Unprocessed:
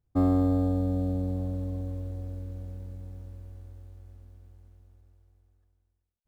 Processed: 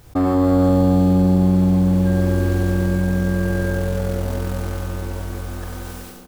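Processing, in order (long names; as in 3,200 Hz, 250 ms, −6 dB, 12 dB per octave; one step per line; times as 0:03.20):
low-shelf EQ 280 Hz −11 dB
leveller curve on the samples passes 1
automatic gain control gain up to 16 dB
0:02.05–0:03.73: steady tone 1,600 Hz −40 dBFS
double-tracking delay 44 ms −8.5 dB
feedback echo with a low-pass in the loop 92 ms, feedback 82%, low-pass 1,500 Hz, level −5 dB
envelope flattener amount 70%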